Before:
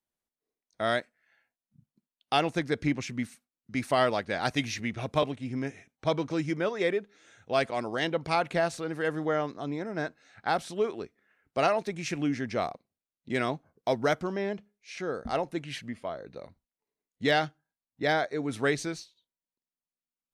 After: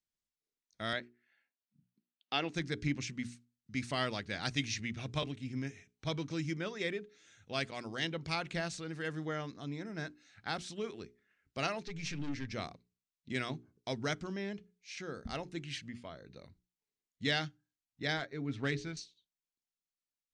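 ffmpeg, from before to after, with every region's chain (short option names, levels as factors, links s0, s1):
-filter_complex "[0:a]asettb=1/sr,asplit=3[s0][s1][s2];[s0]atrim=end=0.934[s3];[s1]atrim=start=0.93:end=2.54,asetpts=PTS-STARTPTS,afade=t=in:d=0.004:c=qsin,afade=t=out:st=1.606:d=0.004:c=qsin,highpass=280,lowpass=3900,lowshelf=f=490:g=5[s4];[s2]atrim=start=2.536[s5];[s3][s4]acrossfade=d=0.004:c1=hsin:c2=qsin[s6];[s6][s5]acrossfade=d=0.004:c1=qsin:c2=hsin,asettb=1/sr,asplit=3[s7][s8][s9];[s7]atrim=end=11.834[s10];[s8]atrim=start=11.83:end=12.53,asetpts=PTS-STARTPTS,afade=t=in:d=0.004:c=qsin,afade=t=out:st=0.696:d=0.004:c=qsin,lowpass=f=6300:w=0.5412,lowpass=f=6300:w=1.3066,aecho=1:1:6.9:0.71,atrim=end_sample=30870,aeval=exprs='(tanh(28.2*val(0)+0.45)-tanh(0.45))/28.2':c=same[s11];[s9]atrim=start=12.526[s12];[s10][s11]acrossfade=d=0.004:c1=hsin:c2=qsin[s13];[s13][s12]acrossfade=d=0.004:c1=qsin:c2=hsin,asettb=1/sr,asplit=3[s14][s15][s16];[s14]atrim=end=18.174[s17];[s15]atrim=start=18.17:end=18.97,asetpts=PTS-STARTPTS,afade=t=in:d=0.004:c=qsin,afade=t=out:st=0.796:d=0.004:c=qsin,aecho=1:1:7.4:0.32,atrim=end_sample=35280,adynamicsmooth=sensitivity=2:basefreq=2900[s18];[s16]atrim=start=18.966[s19];[s17][s18]acrossfade=d=0.004:c1=hsin:c2=qsin[s20];[s20][s19]acrossfade=d=0.004:c1=qsin:c2=hsin,lowpass=f=7800:w=0.5412,lowpass=f=7800:w=1.3066,equalizer=f=690:w=0.51:g=-14,bandreject=f=60:t=h:w=6,bandreject=f=120:t=h:w=6,bandreject=f=180:t=h:w=6,bandreject=f=240:t=h:w=6,bandreject=f=300:t=h:w=6,bandreject=f=360:t=h:w=6,bandreject=f=420:t=h:w=6"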